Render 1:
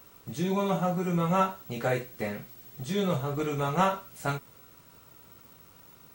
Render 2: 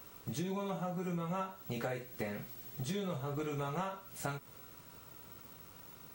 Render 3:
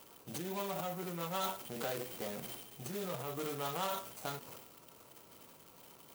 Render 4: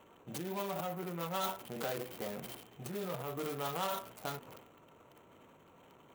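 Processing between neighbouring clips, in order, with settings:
compression 8:1, threshold -35 dBFS, peak gain reduction 15.5 dB
median filter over 25 samples; transient shaper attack -2 dB, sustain +10 dB; RIAA curve recording; trim +2.5 dB
local Wiener filter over 9 samples; trim +1 dB

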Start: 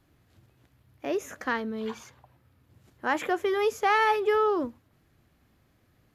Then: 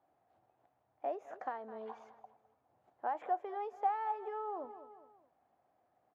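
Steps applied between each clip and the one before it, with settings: feedback delay 208 ms, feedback 42%, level -19 dB; compression 6:1, threshold -31 dBFS, peak gain reduction 12 dB; band-pass filter 740 Hz, Q 5.3; trim +6 dB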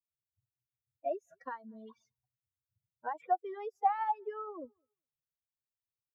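expander on every frequency bin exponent 3; trim +7.5 dB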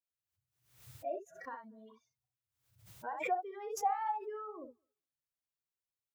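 on a send: early reflections 33 ms -12 dB, 61 ms -6.5 dB; on the sum: swell ahead of each attack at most 95 dB/s; trim -4.5 dB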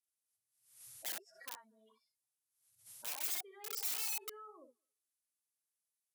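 knee-point frequency compression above 3.5 kHz 1.5:1; integer overflow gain 36.5 dB; RIAA curve recording; trim -8 dB

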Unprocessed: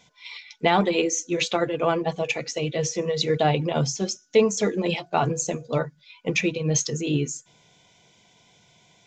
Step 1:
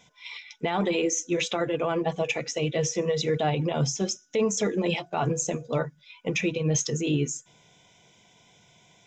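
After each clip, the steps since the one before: band-stop 4.4 kHz, Q 5.1; peak limiter -16.5 dBFS, peak gain reduction 10 dB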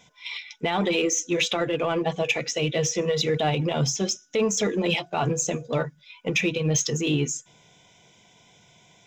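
dynamic bell 3.3 kHz, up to +5 dB, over -44 dBFS, Q 0.92; in parallel at -11 dB: hard clipper -27.5 dBFS, distortion -7 dB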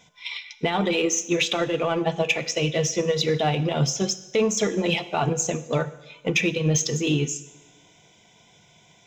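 two-slope reverb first 0.95 s, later 2.5 s, from -18 dB, DRR 11.5 dB; transient shaper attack +3 dB, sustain -1 dB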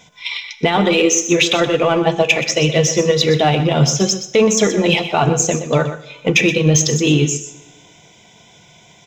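delay 124 ms -11 dB; trim +8.5 dB

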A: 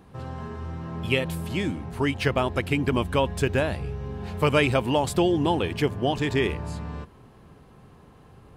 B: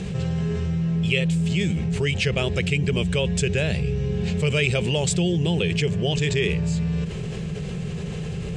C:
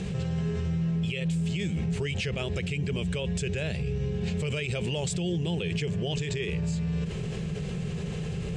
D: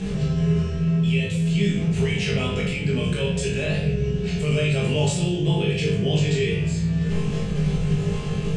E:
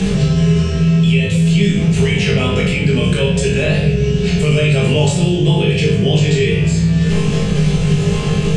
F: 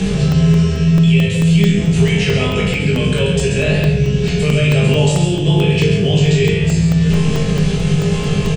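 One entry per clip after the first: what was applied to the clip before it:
FFT filter 120 Hz 0 dB, 170 Hz +12 dB, 270 Hz -14 dB, 420 Hz +3 dB, 1 kHz -15 dB, 2.5 kHz +6 dB, 4.4 kHz +3 dB, 7.7 kHz +9 dB, 13 kHz -25 dB; level flattener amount 70%; trim -4.5 dB
peak limiter -19 dBFS, peak gain reduction 11 dB; trim -3 dB
on a send: flutter echo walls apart 3.4 m, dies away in 0.31 s; on the sum: simulated room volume 190 m³, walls mixed, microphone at 1.4 m
three bands compressed up and down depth 70%; trim +8 dB
delay 134 ms -6.5 dB; crackling interface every 0.22 s, samples 64, zero, from 0.32 s; trim -1 dB

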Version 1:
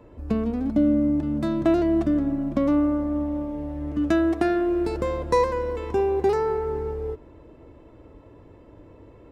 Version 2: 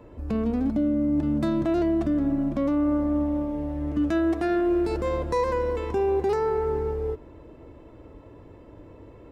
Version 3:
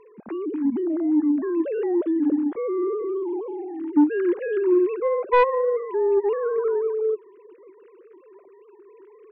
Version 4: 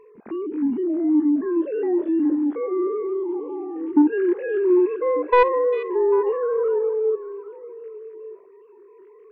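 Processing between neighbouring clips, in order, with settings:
peak limiter -18.5 dBFS, peak gain reduction 9 dB; trim +1.5 dB
formants replaced by sine waves; in parallel at -8 dB: sine folder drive 7 dB, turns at -6.5 dBFS; on the sum: trim -4.5 dB
spectrogram pixelated in time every 50 ms; repeats whose band climbs or falls 398 ms, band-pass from 2.8 kHz, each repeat -1.4 oct, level -10 dB; trim +2 dB

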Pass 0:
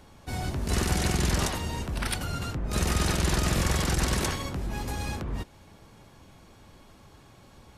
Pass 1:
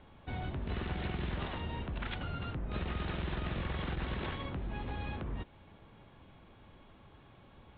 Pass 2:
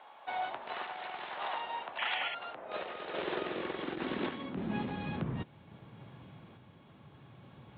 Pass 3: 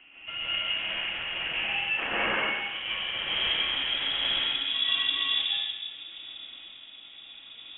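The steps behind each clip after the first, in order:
steep low-pass 3.7 kHz 72 dB/octave; compression 3:1, threshold -30 dBFS, peak gain reduction 7.5 dB; trim -4.5 dB
painted sound noise, 1.98–2.35 s, 1.7–3.4 kHz -41 dBFS; high-pass sweep 780 Hz -> 130 Hz, 2.26–5.48 s; random-step tremolo; trim +4.5 dB
plate-style reverb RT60 1.6 s, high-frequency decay 0.6×, pre-delay 110 ms, DRR -7.5 dB; frequency inversion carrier 3.6 kHz

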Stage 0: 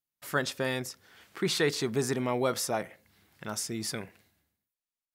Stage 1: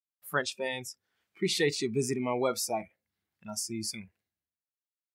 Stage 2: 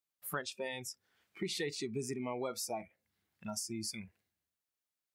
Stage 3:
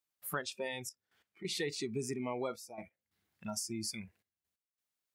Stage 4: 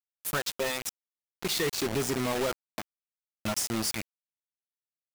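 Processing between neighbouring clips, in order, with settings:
spectral noise reduction 22 dB
compression 3:1, threshold -43 dBFS, peak gain reduction 15 dB; trim +3.5 dB
trance gate "xxxxxxxx..x..xx" 135 bpm -12 dB; trim +1 dB
companded quantiser 2-bit

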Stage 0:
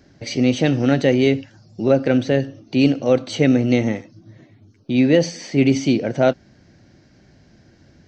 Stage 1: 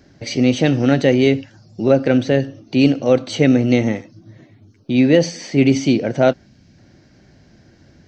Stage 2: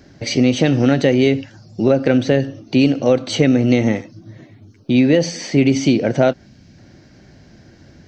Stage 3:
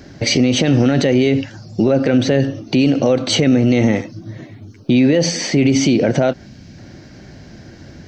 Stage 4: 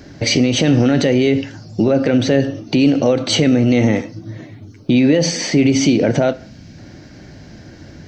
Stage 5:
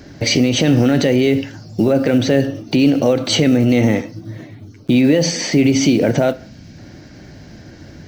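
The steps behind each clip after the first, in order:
time-frequency box 6.46–6.77 s, 290–2200 Hz -6 dB; trim +2 dB
compression 4:1, threshold -14 dBFS, peak gain reduction 6.5 dB; trim +4 dB
peak limiter -12.5 dBFS, peak gain reduction 11 dB; trim +7 dB
FDN reverb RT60 0.48 s, high-frequency decay 0.9×, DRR 13.5 dB
block-companded coder 7-bit

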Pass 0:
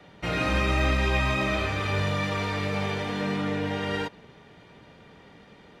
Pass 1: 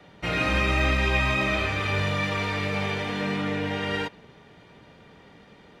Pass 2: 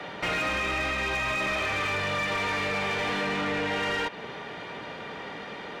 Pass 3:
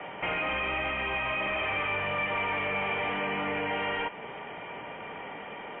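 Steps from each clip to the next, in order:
dynamic bell 2.4 kHz, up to +4 dB, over -41 dBFS, Q 1.3
compression 5:1, threshold -34 dBFS, peak gain reduction 13.5 dB; overdrive pedal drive 21 dB, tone 2.7 kHz, clips at -23 dBFS; trim +3 dB
CVSD coder 32 kbps; rippled Chebyshev low-pass 3.2 kHz, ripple 6 dB; trim +1.5 dB; MP3 24 kbps 11.025 kHz

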